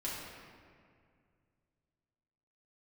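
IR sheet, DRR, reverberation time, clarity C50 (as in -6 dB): -7.5 dB, 2.2 s, -0.5 dB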